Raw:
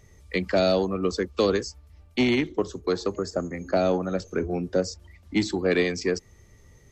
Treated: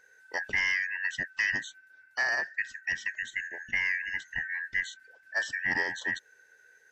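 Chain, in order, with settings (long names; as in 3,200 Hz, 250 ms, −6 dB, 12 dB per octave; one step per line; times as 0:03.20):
band-splitting scrambler in four parts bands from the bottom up 2143
level −7 dB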